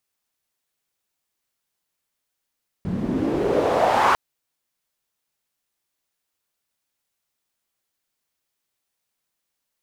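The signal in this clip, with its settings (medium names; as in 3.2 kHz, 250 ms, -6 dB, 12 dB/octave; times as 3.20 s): swept filtered noise pink, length 1.30 s bandpass, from 170 Hz, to 1.1 kHz, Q 3, exponential, gain ramp +9 dB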